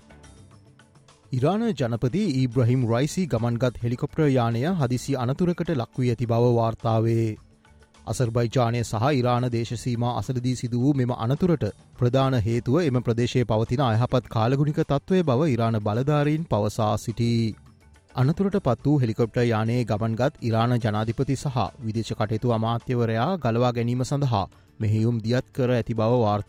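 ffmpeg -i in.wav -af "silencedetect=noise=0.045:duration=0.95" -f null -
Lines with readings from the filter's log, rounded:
silence_start: 0.00
silence_end: 1.33 | silence_duration: 1.33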